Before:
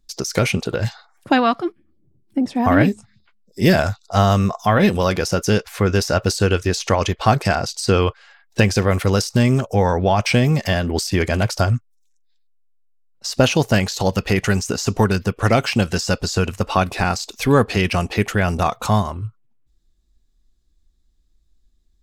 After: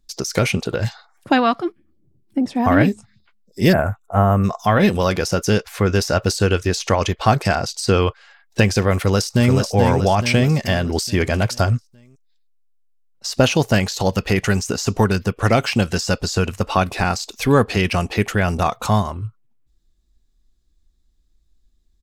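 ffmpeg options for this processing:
-filter_complex "[0:a]asplit=3[a][b][c];[a]afade=t=out:st=3.72:d=0.02[d];[b]asuperstop=centerf=4600:order=4:qfactor=0.51,afade=t=in:st=3.72:d=0.02,afade=t=out:st=4.43:d=0.02[e];[c]afade=t=in:st=4.43:d=0.02[f];[d][e][f]amix=inputs=3:normalize=0,asplit=2[g][h];[h]afade=t=in:st=8.97:d=0.01,afade=t=out:st=9.57:d=0.01,aecho=0:1:430|860|1290|1720|2150|2580:0.595662|0.297831|0.148916|0.0744578|0.0372289|0.0186144[i];[g][i]amix=inputs=2:normalize=0"

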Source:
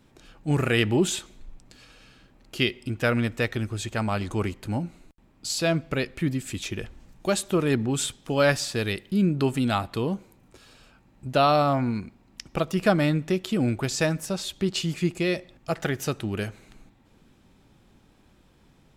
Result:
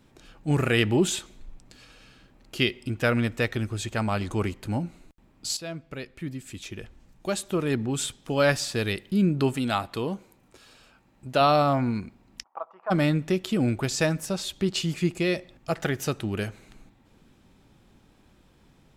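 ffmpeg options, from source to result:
-filter_complex "[0:a]asettb=1/sr,asplit=3[a][b][c];[a]atrim=end=9.534[d];[b]atrim=start=9.53:end=11.41,asetpts=PTS-STARTPTS,afade=t=in:d=0.004:c=qsin,afade=t=out:st=1.876:d=0.004:c=qsin,lowshelf=f=240:g=-6.5[e];[c]atrim=start=11.406[f];[d][e]acrossfade=d=0.004:c1=hsin:c2=qsin[g];[g][f]acrossfade=d=0.004:c1=qsin:c2=hsin,asplit=3[h][i][j];[h]afade=t=out:st=12.42:d=0.02[k];[i]asuperpass=centerf=930:order=4:qfactor=2.1,afade=t=in:st=12.42:d=0.02,afade=t=out:st=12.9:d=0.02[l];[j]afade=t=in:st=12.9:d=0.02[m];[k][l][m]amix=inputs=3:normalize=0,asplit=2[n][o];[n]atrim=end=5.57,asetpts=PTS-STARTPTS,afade=t=out:st=5.566:d=0.004:c=hsin:silence=0.211349[p];[o]atrim=start=5.57,asetpts=PTS-STARTPTS,afade=t=in:d=3.25:silence=0.211349[q];[p][q]concat=n=2:v=0:a=1"

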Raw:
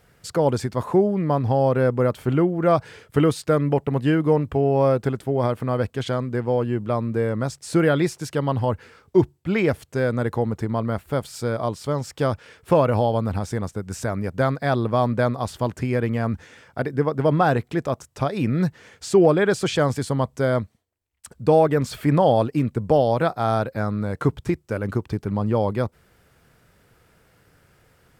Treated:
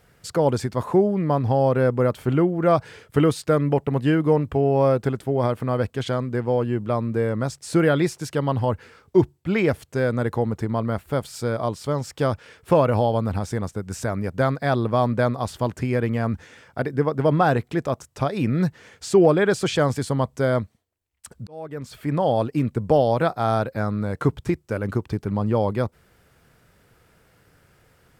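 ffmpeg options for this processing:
-filter_complex "[0:a]asplit=2[a][b];[a]atrim=end=21.47,asetpts=PTS-STARTPTS,afade=t=out:st=21.466:d=0.004:c=hsin[c];[b]atrim=start=21.47,asetpts=PTS-STARTPTS,afade=t=in:d=1.22[d];[c][d]concat=n=2:v=0:a=1"

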